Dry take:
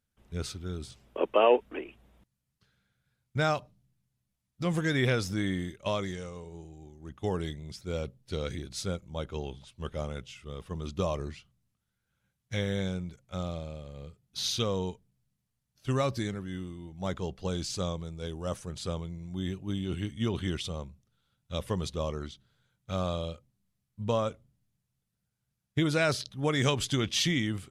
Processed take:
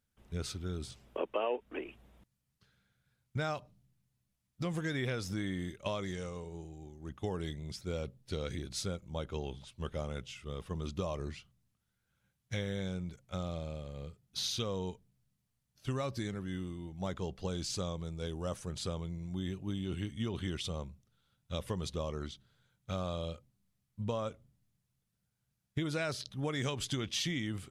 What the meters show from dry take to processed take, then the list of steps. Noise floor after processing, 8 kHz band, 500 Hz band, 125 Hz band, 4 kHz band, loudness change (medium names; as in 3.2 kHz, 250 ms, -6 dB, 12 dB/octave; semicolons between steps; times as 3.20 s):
-82 dBFS, -4.5 dB, -7.5 dB, -5.0 dB, -5.5 dB, -6.5 dB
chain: compression 3:1, threshold -34 dBFS, peak gain reduction 12.5 dB